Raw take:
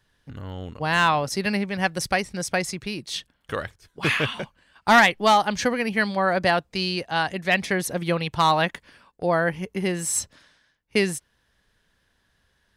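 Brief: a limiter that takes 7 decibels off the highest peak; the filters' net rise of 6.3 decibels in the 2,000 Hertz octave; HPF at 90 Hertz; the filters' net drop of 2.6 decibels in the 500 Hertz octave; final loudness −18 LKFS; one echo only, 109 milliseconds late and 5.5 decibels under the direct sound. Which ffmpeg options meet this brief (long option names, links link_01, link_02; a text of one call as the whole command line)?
ffmpeg -i in.wav -af "highpass=90,equalizer=frequency=500:width_type=o:gain=-4,equalizer=frequency=2000:width_type=o:gain=8,alimiter=limit=-8dB:level=0:latency=1,aecho=1:1:109:0.531,volume=3.5dB" out.wav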